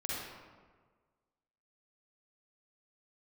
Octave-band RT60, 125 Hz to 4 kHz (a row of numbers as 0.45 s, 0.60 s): 1.6 s, 1.5 s, 1.6 s, 1.5 s, 1.2 s, 0.85 s